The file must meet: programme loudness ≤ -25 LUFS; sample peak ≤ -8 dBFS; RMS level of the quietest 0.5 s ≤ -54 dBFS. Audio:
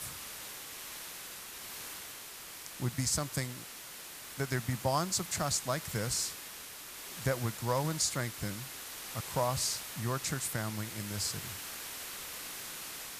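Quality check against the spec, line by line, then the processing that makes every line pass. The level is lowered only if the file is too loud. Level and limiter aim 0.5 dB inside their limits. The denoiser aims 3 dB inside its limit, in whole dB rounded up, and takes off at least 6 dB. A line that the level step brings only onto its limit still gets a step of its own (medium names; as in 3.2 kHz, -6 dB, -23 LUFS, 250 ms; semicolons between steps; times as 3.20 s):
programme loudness -35.5 LUFS: pass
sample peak -15.5 dBFS: pass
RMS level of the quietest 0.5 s -47 dBFS: fail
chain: noise reduction 10 dB, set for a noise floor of -47 dBFS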